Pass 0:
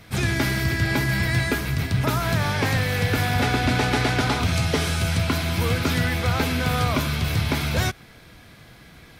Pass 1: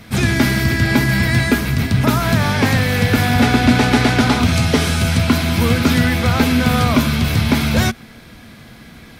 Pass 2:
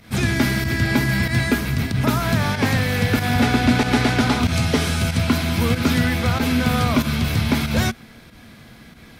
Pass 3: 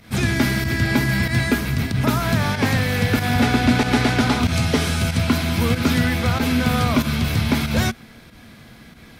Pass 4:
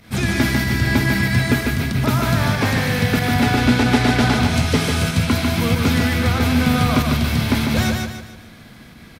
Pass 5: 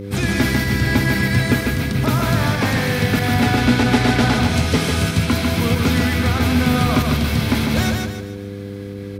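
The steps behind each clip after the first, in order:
peaking EQ 230 Hz +11 dB 0.3 oct; trim +6 dB
volume shaper 94 bpm, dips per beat 1, -9 dB, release 100 ms; trim -4 dB
no audible change
feedback delay 148 ms, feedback 39%, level -4 dB
mains buzz 100 Hz, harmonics 5, -30 dBFS -2 dB/octave

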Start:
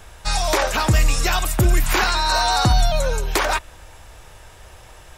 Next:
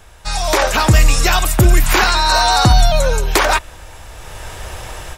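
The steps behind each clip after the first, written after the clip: level rider gain up to 15.5 dB; trim -1 dB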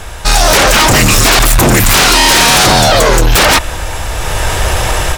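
in parallel at +0.5 dB: peak limiter -13.5 dBFS, peak gain reduction 11.5 dB; on the sum: sine folder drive 12 dB, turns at 0.5 dBFS; trim -4.5 dB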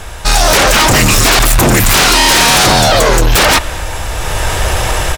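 speakerphone echo 220 ms, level -16 dB; trim -1 dB

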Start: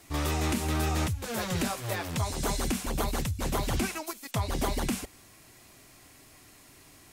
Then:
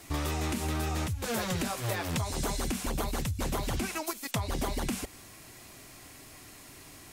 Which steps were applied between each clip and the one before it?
compression, threshold -33 dBFS, peak gain reduction 8.5 dB; trim +4.5 dB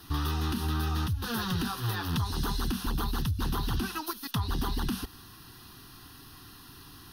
in parallel at -5 dB: hard clipper -28.5 dBFS, distortion -15 dB; on the sum: static phaser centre 2.2 kHz, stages 6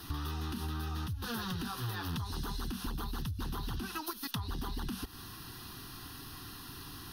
compression 6:1, threshold -38 dBFS, peak gain reduction 11.5 dB; trim +3 dB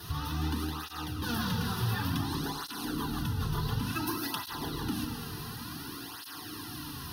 FDN reverb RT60 3.5 s, high-frequency decay 0.65×, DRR 0 dB; cancelling through-zero flanger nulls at 0.56 Hz, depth 3.8 ms; trim +5.5 dB

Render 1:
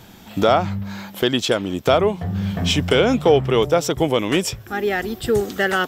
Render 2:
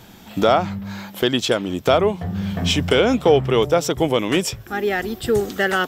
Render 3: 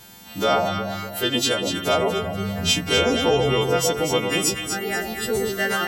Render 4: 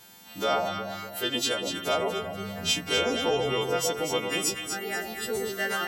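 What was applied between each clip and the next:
hum notches 50/100/150 Hz
partials quantised in pitch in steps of 2 st; echo whose repeats swap between lows and highs 121 ms, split 880 Hz, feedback 68%, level -3 dB; trim -5 dB
bass shelf 170 Hz -10 dB; trim -5.5 dB

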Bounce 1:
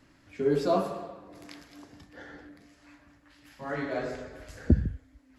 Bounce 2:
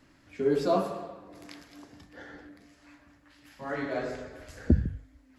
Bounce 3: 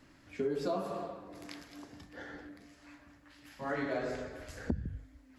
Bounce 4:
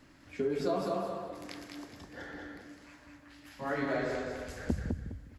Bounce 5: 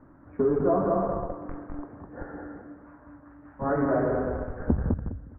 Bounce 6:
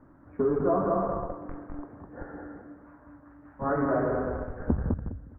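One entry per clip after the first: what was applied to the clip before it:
hum notches 50/100/150 Hz
compression 10:1, threshold -30 dBFS, peak gain reduction 14.5 dB
feedback delay 205 ms, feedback 24%, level -4 dB; trim +1.5 dB
in parallel at -4 dB: Schmitt trigger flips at -34.5 dBFS; on the sum: steep low-pass 1.4 kHz 36 dB/octave; trim +6.5 dB
dynamic bell 1.2 kHz, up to +4 dB, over -43 dBFS, Q 2.3; trim -2 dB

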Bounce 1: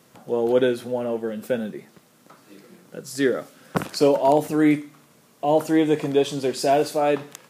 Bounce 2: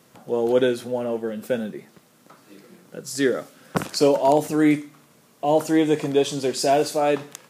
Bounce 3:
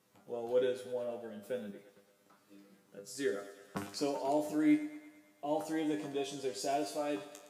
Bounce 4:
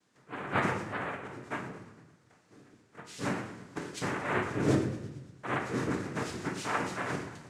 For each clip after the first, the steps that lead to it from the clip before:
dynamic bell 6.7 kHz, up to +5 dB, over -46 dBFS, Q 0.93
feedback comb 100 Hz, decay 0.26 s, harmonics all, mix 90%; thinning echo 113 ms, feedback 65%, high-pass 280 Hz, level -13.5 dB; trim -7 dB
noise-vocoded speech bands 3; on a send at -3.5 dB: reverberation RT60 0.90 s, pre-delay 7 ms

